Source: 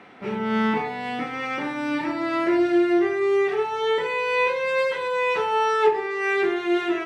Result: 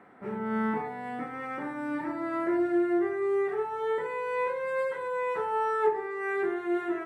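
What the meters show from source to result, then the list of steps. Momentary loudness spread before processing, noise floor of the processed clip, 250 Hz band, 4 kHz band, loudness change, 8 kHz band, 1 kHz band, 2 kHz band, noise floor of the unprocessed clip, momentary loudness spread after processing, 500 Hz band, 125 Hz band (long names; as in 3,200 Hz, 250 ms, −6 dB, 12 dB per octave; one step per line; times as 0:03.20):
8 LU, −39 dBFS, −6.5 dB, below −20 dB, −7.0 dB, can't be measured, −6.5 dB, −10.0 dB, −32 dBFS, 9 LU, −6.5 dB, −6.5 dB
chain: flat-topped bell 3,900 Hz −14 dB
level −6.5 dB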